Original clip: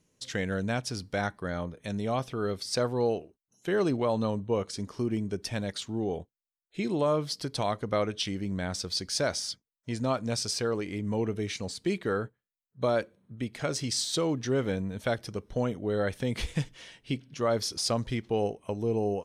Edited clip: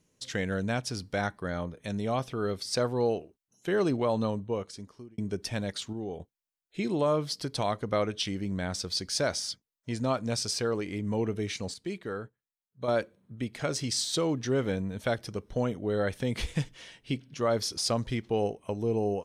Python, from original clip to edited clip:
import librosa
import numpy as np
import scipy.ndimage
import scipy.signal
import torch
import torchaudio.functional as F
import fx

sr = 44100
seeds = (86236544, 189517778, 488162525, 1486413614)

y = fx.edit(x, sr, fx.fade_out_span(start_s=4.23, length_s=0.95),
    fx.clip_gain(start_s=5.93, length_s=0.27, db=-5.5),
    fx.clip_gain(start_s=11.74, length_s=1.14, db=-6.5), tone=tone)